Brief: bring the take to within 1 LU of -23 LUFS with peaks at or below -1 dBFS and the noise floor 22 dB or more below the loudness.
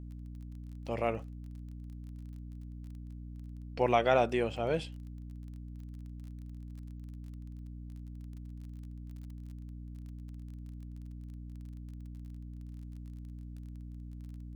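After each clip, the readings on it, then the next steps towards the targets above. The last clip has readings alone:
ticks 28/s; hum 60 Hz; harmonics up to 300 Hz; hum level -42 dBFS; loudness -39.0 LUFS; peak -12.0 dBFS; loudness target -23.0 LUFS
-> de-click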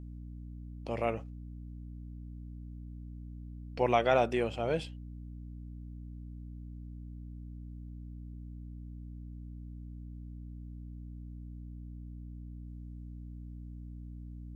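ticks 0/s; hum 60 Hz; harmonics up to 300 Hz; hum level -42 dBFS
-> notches 60/120/180/240/300 Hz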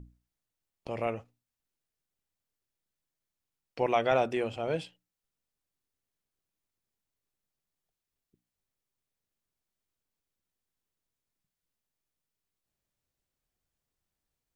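hum none; loudness -31.0 LUFS; peak -12.5 dBFS; loudness target -23.0 LUFS
-> gain +8 dB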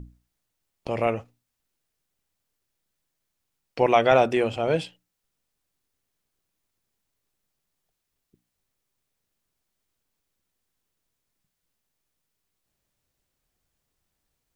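loudness -23.0 LUFS; peak -4.5 dBFS; noise floor -81 dBFS

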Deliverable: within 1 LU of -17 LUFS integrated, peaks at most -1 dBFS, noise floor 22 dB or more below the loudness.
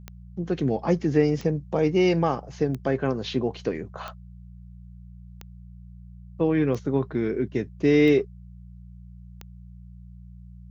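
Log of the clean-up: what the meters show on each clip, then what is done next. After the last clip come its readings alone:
clicks 8; hum 60 Hz; harmonics up to 180 Hz; hum level -42 dBFS; loudness -24.5 LUFS; peak -9.0 dBFS; loudness target -17.0 LUFS
-> de-click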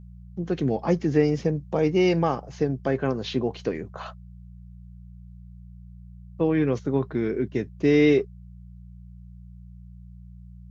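clicks 0; hum 60 Hz; harmonics up to 180 Hz; hum level -42 dBFS
-> de-hum 60 Hz, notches 3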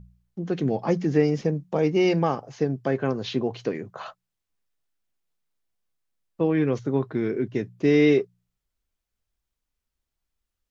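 hum none; loudness -24.5 LUFS; peak -9.0 dBFS; loudness target -17.0 LUFS
-> gain +7.5 dB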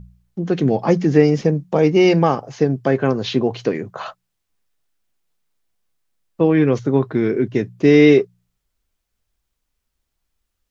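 loudness -17.0 LUFS; peak -1.5 dBFS; noise floor -76 dBFS

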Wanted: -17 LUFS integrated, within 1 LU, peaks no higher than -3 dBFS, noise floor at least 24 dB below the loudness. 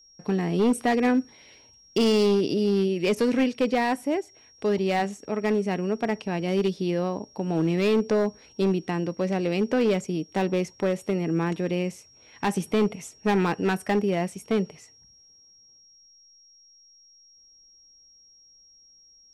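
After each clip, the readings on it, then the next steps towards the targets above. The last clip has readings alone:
clipped 1.6%; flat tops at -16.5 dBFS; steady tone 5600 Hz; tone level -53 dBFS; loudness -25.5 LUFS; peak -16.5 dBFS; loudness target -17.0 LUFS
-> clip repair -16.5 dBFS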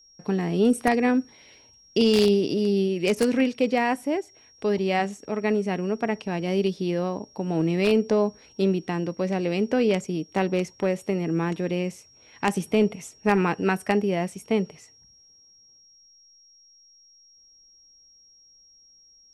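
clipped 0.0%; steady tone 5600 Hz; tone level -53 dBFS
-> notch 5600 Hz, Q 30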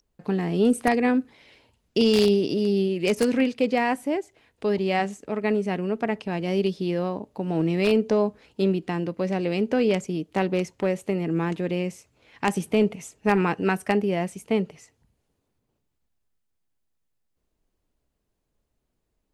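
steady tone none; loudness -24.5 LUFS; peak -7.5 dBFS; loudness target -17.0 LUFS
-> gain +7.5 dB; limiter -3 dBFS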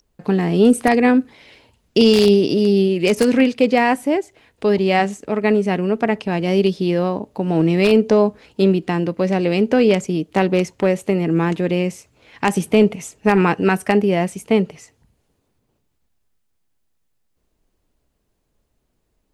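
loudness -17.5 LUFS; peak -3.0 dBFS; noise floor -69 dBFS

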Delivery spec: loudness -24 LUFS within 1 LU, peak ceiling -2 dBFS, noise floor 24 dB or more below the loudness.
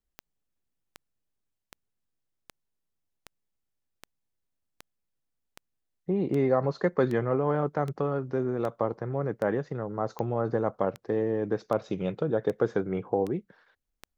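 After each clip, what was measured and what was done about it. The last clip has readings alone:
clicks 19; loudness -29.0 LUFS; peak -11.0 dBFS; loudness target -24.0 LUFS
-> de-click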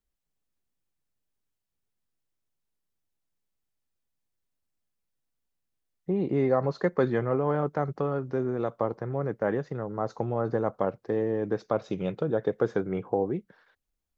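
clicks 0; loudness -29.0 LUFS; peak -11.0 dBFS; loudness target -24.0 LUFS
-> gain +5 dB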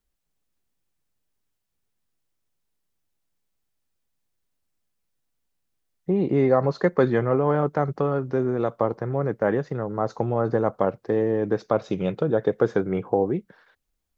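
loudness -24.0 LUFS; peak -6.0 dBFS; noise floor -77 dBFS

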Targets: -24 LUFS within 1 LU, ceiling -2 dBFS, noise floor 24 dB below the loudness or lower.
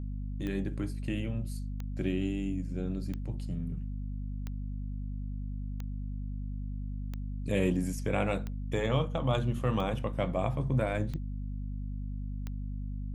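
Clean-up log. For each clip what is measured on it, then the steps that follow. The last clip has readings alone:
clicks 10; hum 50 Hz; harmonics up to 250 Hz; hum level -34 dBFS; loudness -34.5 LUFS; peak -14.0 dBFS; loudness target -24.0 LUFS
-> de-click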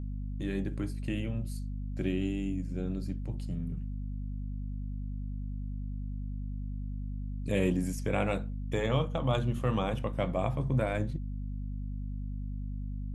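clicks 0; hum 50 Hz; harmonics up to 550 Hz; hum level -34 dBFS
-> de-hum 50 Hz, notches 11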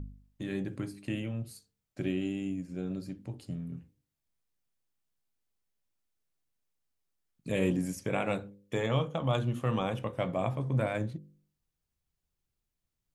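hum none; loudness -34.0 LUFS; peak -14.5 dBFS; loudness target -24.0 LUFS
-> gain +10 dB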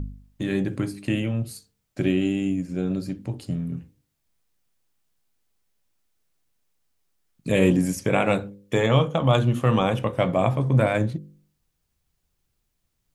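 loudness -24.0 LUFS; peak -4.5 dBFS; noise floor -76 dBFS

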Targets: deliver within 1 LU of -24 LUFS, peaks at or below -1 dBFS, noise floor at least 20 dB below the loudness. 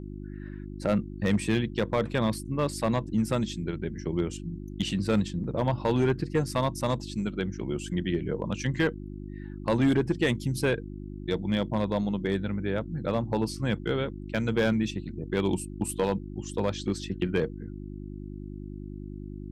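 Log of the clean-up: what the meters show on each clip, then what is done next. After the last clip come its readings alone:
clipped 0.5%; flat tops at -17.0 dBFS; hum 50 Hz; harmonics up to 350 Hz; hum level -37 dBFS; loudness -29.0 LUFS; peak -17.0 dBFS; loudness target -24.0 LUFS
-> clip repair -17 dBFS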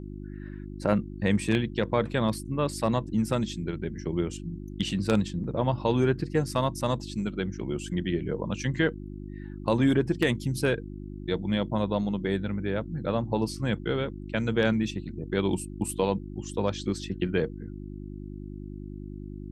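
clipped 0.0%; hum 50 Hz; harmonics up to 350 Hz; hum level -37 dBFS
-> de-hum 50 Hz, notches 7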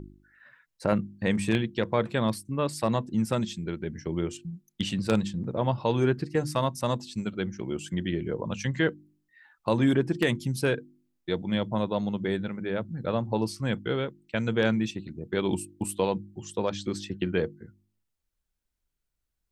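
hum none; loudness -29.0 LUFS; peak -8.0 dBFS; loudness target -24.0 LUFS
-> gain +5 dB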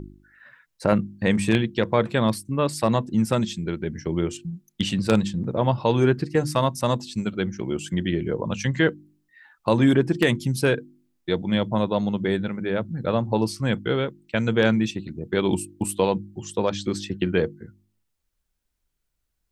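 loudness -24.0 LUFS; peak -3.0 dBFS; noise floor -76 dBFS

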